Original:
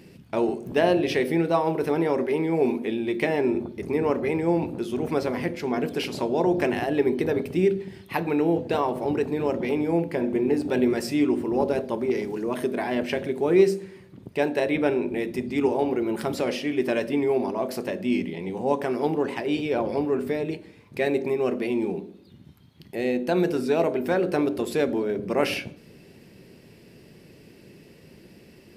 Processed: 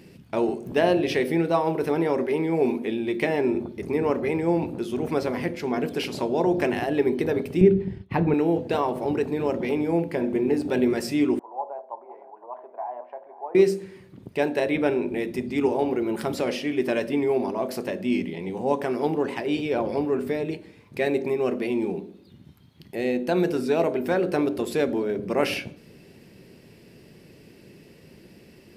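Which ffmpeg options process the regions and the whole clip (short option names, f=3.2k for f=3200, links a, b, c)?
-filter_complex "[0:a]asettb=1/sr,asplit=3[a][b][c];[a]atrim=end=7.614[d];[b]atrim=start=7.61:end=8.34,asetpts=PTS-STARTPTS,afade=t=in:d=0.004:c=qsin,afade=t=out:st=0.726:d=0.004:c=qsin,agate=range=-33dB:threshold=-40dB:ratio=3:release=100:detection=peak,aemphasis=mode=reproduction:type=riaa[e];[c]atrim=start=8.336[f];[d][e]acrossfade=d=0.004:c1=hsin:c2=qsin[g];[g][f]acrossfade=d=0.004:c1=qsin:c2=hsin,asettb=1/sr,asplit=3[h][i][j];[h]atrim=end=11.394[k];[i]atrim=start=11.39:end=13.55,asetpts=PTS-STARTPTS,afade=t=in:d=0.004:c=qsin,afade=t=out:st=2.156:d=0.004:c=qsin,asuperpass=centerf=820:order=4:qfactor=2.4,aecho=1:1:508:0.168,atrim=end_sample=95256[l];[j]atrim=start=13.546[m];[k][l]acrossfade=d=0.004:c1=hsin:c2=qsin[n];[n][m]acrossfade=d=0.004:c1=qsin:c2=hsin"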